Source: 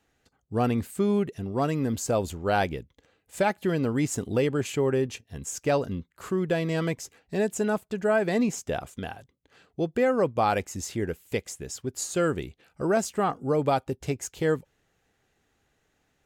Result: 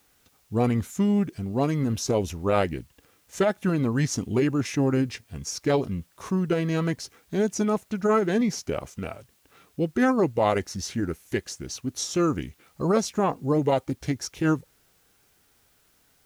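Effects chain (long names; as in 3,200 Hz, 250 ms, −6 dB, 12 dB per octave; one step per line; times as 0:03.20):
formants moved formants −3 semitones
background noise white −67 dBFS
level +2 dB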